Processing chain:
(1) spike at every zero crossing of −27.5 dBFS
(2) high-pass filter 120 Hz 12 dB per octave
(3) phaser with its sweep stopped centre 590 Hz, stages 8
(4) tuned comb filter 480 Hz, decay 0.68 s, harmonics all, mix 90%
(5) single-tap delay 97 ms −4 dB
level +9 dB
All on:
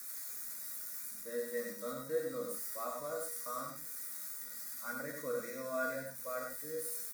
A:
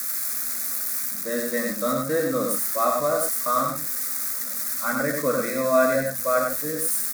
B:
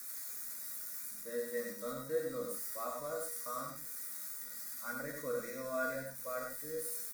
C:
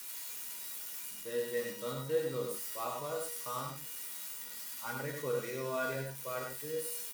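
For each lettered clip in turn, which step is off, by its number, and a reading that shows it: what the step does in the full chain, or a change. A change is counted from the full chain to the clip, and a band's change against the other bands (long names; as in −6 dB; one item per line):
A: 4, 250 Hz band +2.5 dB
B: 2, 125 Hz band +2.0 dB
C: 3, 125 Hz band +10.0 dB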